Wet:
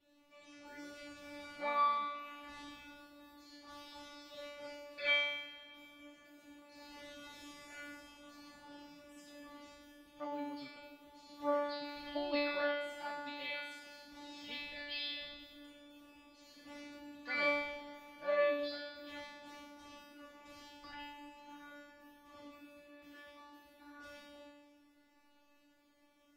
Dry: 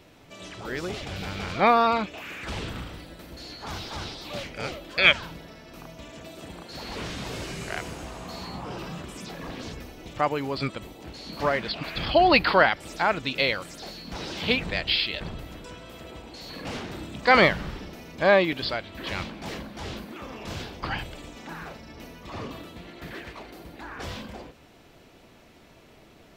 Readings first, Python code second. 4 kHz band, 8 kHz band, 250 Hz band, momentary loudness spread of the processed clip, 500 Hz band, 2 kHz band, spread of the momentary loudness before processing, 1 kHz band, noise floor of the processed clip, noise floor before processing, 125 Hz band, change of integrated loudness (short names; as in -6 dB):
-15.0 dB, -17.0 dB, -15.5 dB, 24 LU, -13.5 dB, -14.5 dB, 22 LU, -15.0 dB, -68 dBFS, -53 dBFS, under -30 dB, -13.5 dB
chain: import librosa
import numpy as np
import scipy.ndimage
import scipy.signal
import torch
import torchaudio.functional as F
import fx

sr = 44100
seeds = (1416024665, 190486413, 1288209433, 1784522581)

y = fx.comb_fb(x, sr, f0_hz=290.0, decay_s=1.1, harmonics='all', damping=0.0, mix_pct=100)
y = fx.rev_freeverb(y, sr, rt60_s=4.1, hf_ratio=0.55, predelay_ms=20, drr_db=12.5)
y = F.gain(torch.from_numpy(y), 3.5).numpy()